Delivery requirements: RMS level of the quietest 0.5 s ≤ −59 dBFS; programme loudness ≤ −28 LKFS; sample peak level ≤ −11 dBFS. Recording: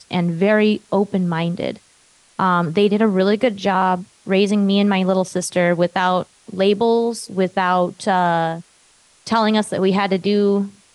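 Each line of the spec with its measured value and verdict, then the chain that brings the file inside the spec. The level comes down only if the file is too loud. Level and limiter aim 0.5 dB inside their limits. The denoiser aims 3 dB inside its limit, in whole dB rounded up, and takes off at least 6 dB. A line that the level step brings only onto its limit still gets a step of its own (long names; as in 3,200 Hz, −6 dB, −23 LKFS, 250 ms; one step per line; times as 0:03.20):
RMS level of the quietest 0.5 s −54 dBFS: out of spec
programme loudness −18.5 LKFS: out of spec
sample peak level −5.5 dBFS: out of spec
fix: level −10 dB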